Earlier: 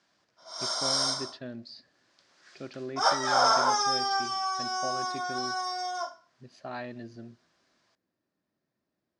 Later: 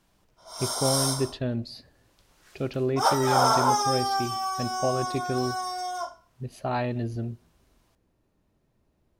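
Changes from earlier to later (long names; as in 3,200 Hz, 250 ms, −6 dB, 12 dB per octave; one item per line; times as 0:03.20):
speech +8.0 dB
master: remove loudspeaker in its box 210–6,700 Hz, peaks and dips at 440 Hz −6 dB, 880 Hz −5 dB, 1,700 Hz +5 dB, 2,800 Hz −3 dB, 4,800 Hz +5 dB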